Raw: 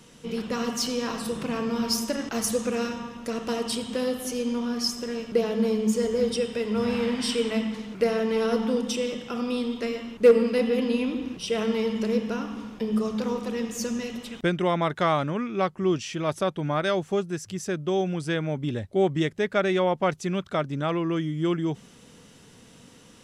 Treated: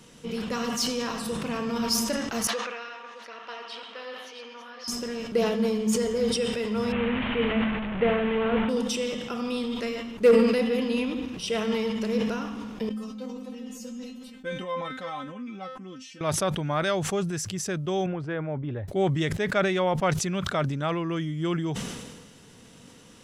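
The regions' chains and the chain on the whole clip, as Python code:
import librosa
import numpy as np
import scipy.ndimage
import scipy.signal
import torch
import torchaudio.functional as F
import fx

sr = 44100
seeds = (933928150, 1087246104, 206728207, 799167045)

y = fx.chain(x, sr, fx.reverse_delay(ms=395, wet_db=-7.5),
    fx.highpass(hz=1100.0, slope=12),
    fx.air_absorb(metres=280.0), at=(2.47, 4.88))
y = fx.chain(y, sr, fx.delta_mod(bps=16000, step_db=-25.5),
    fx.low_shelf(hz=140.0, db=7.0), at=(6.92, 8.69))
y = fx.chain(y, sr, fx.peak_eq(hz=200.0, db=8.5, octaves=0.33),
    fx.comb_fb(f0_hz=260.0, decay_s=0.19, harmonics='all', damping=0.0, mix_pct=100), at=(12.89, 16.21))
y = fx.chain(y, sr, fx.lowpass(hz=1500.0, slope=12),
    fx.peak_eq(hz=200.0, db=-15.0, octaves=0.38), at=(18.06, 18.88))
y = fx.dynamic_eq(y, sr, hz=330.0, q=1.1, threshold_db=-35.0, ratio=4.0, max_db=-4)
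y = fx.sustainer(y, sr, db_per_s=38.0)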